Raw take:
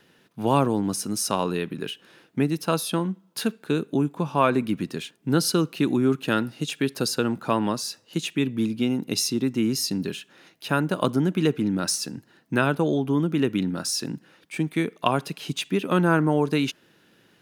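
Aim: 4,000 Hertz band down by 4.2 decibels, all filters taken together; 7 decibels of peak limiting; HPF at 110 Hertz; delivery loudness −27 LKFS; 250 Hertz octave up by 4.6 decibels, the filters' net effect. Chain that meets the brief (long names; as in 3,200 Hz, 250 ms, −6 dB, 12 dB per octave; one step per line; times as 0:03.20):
high-pass filter 110 Hz
parametric band 250 Hz +6 dB
parametric band 4,000 Hz −6 dB
level −3.5 dB
brickwall limiter −15.5 dBFS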